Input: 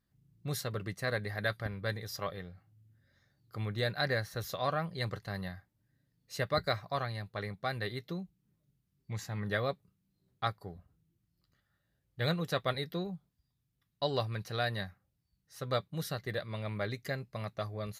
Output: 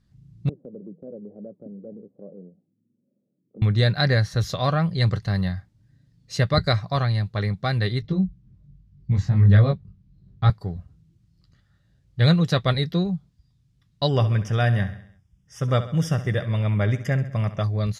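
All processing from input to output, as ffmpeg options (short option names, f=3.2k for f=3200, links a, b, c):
-filter_complex "[0:a]asettb=1/sr,asplit=3[a][b][c];[a]atrim=end=0.494[d];[b]atrim=start=0.49:end=3.62,asetpts=PTS-STARTPTS,afade=t=in:d=0.004:c=qsin,afade=t=out:st=3.126:d=0.004:c=qsin,flanger=delay=2.9:depth=6:regen=-88:speed=2:shape=sinusoidal,asuperpass=centerf=330:order=8:qfactor=0.91,acompressor=threshold=-51dB:ratio=1.5:attack=3.2:release=140:knee=1:detection=peak[e];[c]atrim=start=3.616[f];[d][e]acrossfade=d=0.004:c1=hsin:c2=qsin[g];[g][f]acrossfade=d=0.004:c1=qsin:c2=hsin,asettb=1/sr,asplit=3[h][i][j];[h]atrim=end=8.024[k];[i]atrim=start=8.02:end=10.5,asetpts=PTS-STARTPTS,afade=t=in:d=0.004:c=qsin,afade=t=out:st=2.476:d=0.004:c=qsin,aemphasis=mode=reproduction:type=bsi,flanger=delay=19.5:depth=3.3:speed=1.2[l];[j]atrim=start=10.496[m];[k][l]acrossfade=d=0.004:c1=hsin:c2=qsin[n];[n][m]acrossfade=d=0.004:c1=qsin:c2=hsin,asettb=1/sr,asplit=3[o][p][q];[o]atrim=end=14.084[r];[p]atrim=start=14.08:end=17.64,asetpts=PTS-STARTPTS,afade=t=in:d=0.004:c=qsin,afade=t=out:st=3.556:d=0.004:c=qsin,asuperstop=centerf=4200:order=12:qfactor=3.4,aecho=1:1:67|134|201|268|335:0.211|0.112|0.0594|0.0315|0.0167,atrim=end_sample=156996[s];[q]atrim=start=17.636[t];[r][s]acrossfade=d=0.004:c1=hsin:c2=qsin[u];[u][t]acrossfade=d=0.004:c1=qsin:c2=hsin,lowpass=5.2k,bass=f=250:g=11,treble=f=4k:g=9,volume=7.5dB"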